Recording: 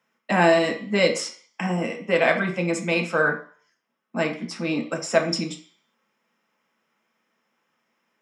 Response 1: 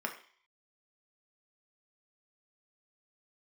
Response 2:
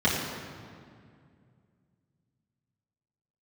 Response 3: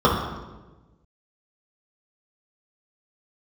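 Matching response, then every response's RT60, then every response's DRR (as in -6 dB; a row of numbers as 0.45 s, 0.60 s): 1; 0.50 s, 2.2 s, 1.2 s; 2.0 dB, -9.0 dB, -7.0 dB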